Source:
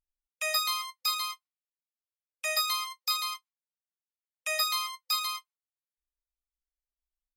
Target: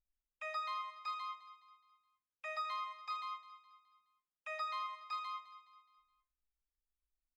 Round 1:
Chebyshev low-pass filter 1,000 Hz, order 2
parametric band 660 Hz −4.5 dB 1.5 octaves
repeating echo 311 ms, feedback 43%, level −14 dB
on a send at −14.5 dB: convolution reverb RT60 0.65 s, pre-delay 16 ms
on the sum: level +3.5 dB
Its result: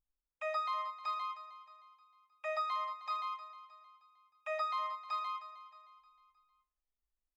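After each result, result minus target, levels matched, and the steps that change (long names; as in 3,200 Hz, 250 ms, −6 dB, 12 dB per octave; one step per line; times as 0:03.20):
echo 101 ms late; 500 Hz band +5.5 dB
change: repeating echo 210 ms, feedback 43%, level −14 dB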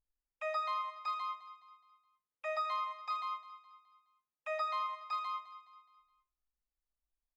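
500 Hz band +5.5 dB
change: parametric band 660 Hz −14.5 dB 1.5 octaves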